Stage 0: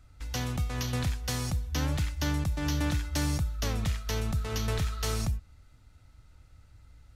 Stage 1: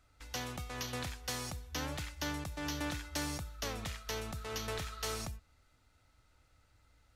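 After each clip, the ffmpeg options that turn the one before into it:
ffmpeg -i in.wav -af "bass=frequency=250:gain=-11,treble=frequency=4000:gain=-1,volume=-3.5dB" out.wav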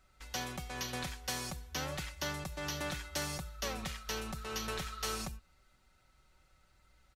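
ffmpeg -i in.wav -af "aecho=1:1:5.3:0.6" out.wav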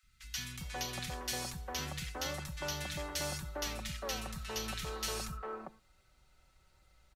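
ffmpeg -i in.wav -filter_complex "[0:a]acrossover=split=230|1500[link_01][link_02][link_03];[link_01]adelay=30[link_04];[link_02]adelay=400[link_05];[link_04][link_05][link_03]amix=inputs=3:normalize=0,volume=1dB" out.wav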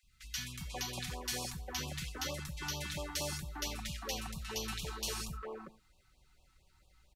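ffmpeg -i in.wav -af "afftfilt=real='re*(1-between(b*sr/1024,470*pow(1800/470,0.5+0.5*sin(2*PI*4.4*pts/sr))/1.41,470*pow(1800/470,0.5+0.5*sin(2*PI*4.4*pts/sr))*1.41))':imag='im*(1-between(b*sr/1024,470*pow(1800/470,0.5+0.5*sin(2*PI*4.4*pts/sr))/1.41,470*pow(1800/470,0.5+0.5*sin(2*PI*4.4*pts/sr))*1.41))':win_size=1024:overlap=0.75" out.wav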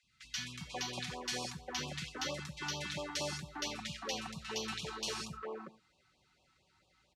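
ffmpeg -i in.wav -af "highpass=140,lowpass=6100,volume=1.5dB" out.wav

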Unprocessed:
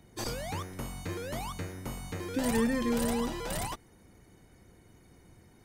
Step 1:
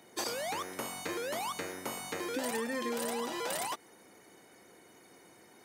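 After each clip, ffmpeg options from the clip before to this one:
ffmpeg -i in.wav -af "highpass=380,acompressor=threshold=-38dB:ratio=6,volume=6dB" out.wav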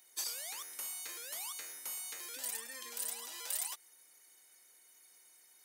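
ffmpeg -i in.wav -af "aderivative,volume=1.5dB" out.wav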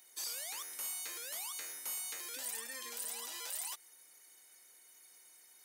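ffmpeg -i in.wav -af "alimiter=level_in=9dB:limit=-24dB:level=0:latency=1:release=13,volume=-9dB,volume=2dB" out.wav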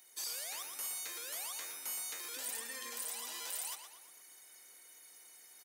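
ffmpeg -i in.wav -filter_complex "[0:a]areverse,acompressor=mode=upward:threshold=-52dB:ratio=2.5,areverse,asplit=2[link_01][link_02];[link_02]adelay=118,lowpass=frequency=4300:poles=1,volume=-6dB,asplit=2[link_03][link_04];[link_04]adelay=118,lowpass=frequency=4300:poles=1,volume=0.53,asplit=2[link_05][link_06];[link_06]adelay=118,lowpass=frequency=4300:poles=1,volume=0.53,asplit=2[link_07][link_08];[link_08]adelay=118,lowpass=frequency=4300:poles=1,volume=0.53,asplit=2[link_09][link_10];[link_10]adelay=118,lowpass=frequency=4300:poles=1,volume=0.53,asplit=2[link_11][link_12];[link_12]adelay=118,lowpass=frequency=4300:poles=1,volume=0.53,asplit=2[link_13][link_14];[link_14]adelay=118,lowpass=frequency=4300:poles=1,volume=0.53[link_15];[link_01][link_03][link_05][link_07][link_09][link_11][link_13][link_15]amix=inputs=8:normalize=0" out.wav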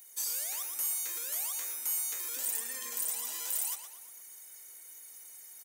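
ffmpeg -i in.wav -af "aexciter=amount=2.6:drive=4.4:freq=6200" out.wav

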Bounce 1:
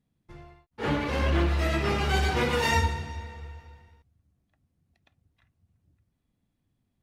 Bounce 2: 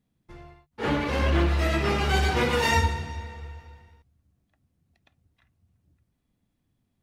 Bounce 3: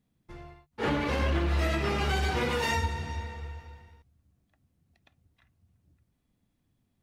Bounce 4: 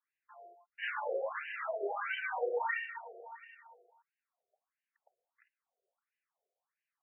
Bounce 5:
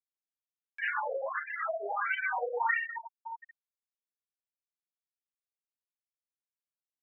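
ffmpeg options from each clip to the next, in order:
ffmpeg -i in.wav -af "bandreject=frequency=50:width_type=h:width=6,bandreject=frequency=100:width_type=h:width=6,bandreject=frequency=150:width_type=h:width=6,volume=2dB" out.wav
ffmpeg -i in.wav -af "alimiter=limit=-18.5dB:level=0:latency=1:release=262" out.wav
ffmpeg -i in.wav -af "afftfilt=real='re*between(b*sr/1024,510*pow(2200/510,0.5+0.5*sin(2*PI*1.5*pts/sr))/1.41,510*pow(2200/510,0.5+0.5*sin(2*PI*1.5*pts/sr))*1.41)':imag='im*between(b*sr/1024,510*pow(2200/510,0.5+0.5*sin(2*PI*1.5*pts/sr))/1.41,510*pow(2200/510,0.5+0.5*sin(2*PI*1.5*pts/sr))*1.41)':win_size=1024:overlap=0.75" out.wav
ffmpeg -i in.wav -af "highpass=750,lowpass=2500,afftfilt=real='re*gte(hypot(re,im),0.0224)':imag='im*gte(hypot(re,im),0.0224)':win_size=1024:overlap=0.75,acompressor=mode=upward:threshold=-43dB:ratio=2.5,volume=7.5dB" out.wav

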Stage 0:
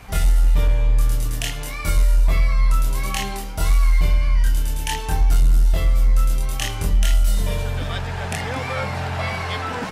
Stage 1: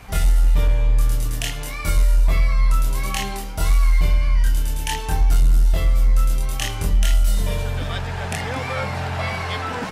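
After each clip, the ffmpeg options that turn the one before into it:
ffmpeg -i in.wav -af anull out.wav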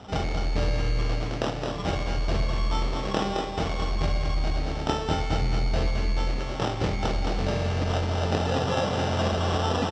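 ffmpeg -i in.wav -af "acrusher=samples=20:mix=1:aa=0.000001,highpass=110,equalizer=frequency=150:width_type=q:width=4:gain=-4,equalizer=frequency=1000:width_type=q:width=4:gain=-7,equalizer=frequency=1500:width_type=q:width=4:gain=-7,equalizer=frequency=3400:width_type=q:width=4:gain=-4,lowpass=frequency=5500:width=0.5412,lowpass=frequency=5500:width=1.3066,aecho=1:1:217|434|651|868|1085|1302|1519:0.501|0.281|0.157|0.088|0.0493|0.0276|0.0155,volume=2dB" out.wav

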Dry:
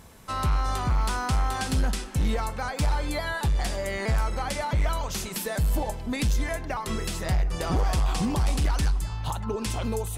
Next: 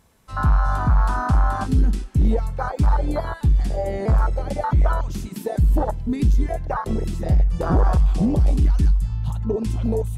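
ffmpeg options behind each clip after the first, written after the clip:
ffmpeg -i in.wav -af "afwtdn=0.0562,volume=7.5dB" out.wav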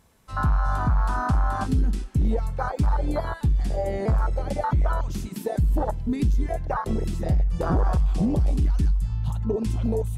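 ffmpeg -i in.wav -af "acompressor=threshold=-17dB:ratio=3,volume=-1.5dB" out.wav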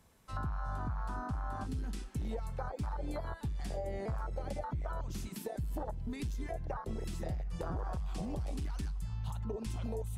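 ffmpeg -i in.wav -filter_complex "[0:a]acrossover=split=97|570[link_01][link_02][link_03];[link_01]acompressor=threshold=-34dB:ratio=4[link_04];[link_02]acompressor=threshold=-38dB:ratio=4[link_05];[link_03]acompressor=threshold=-39dB:ratio=4[link_06];[link_04][link_05][link_06]amix=inputs=3:normalize=0,volume=-5dB" out.wav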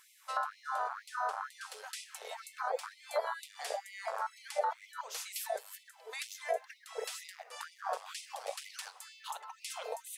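ffmpeg -i in.wav -af "afftfilt=real='re*gte(b*sr/1024,390*pow(2000/390,0.5+0.5*sin(2*PI*2.1*pts/sr)))':imag='im*gte(b*sr/1024,390*pow(2000/390,0.5+0.5*sin(2*PI*2.1*pts/sr)))':win_size=1024:overlap=0.75,volume=9.5dB" out.wav

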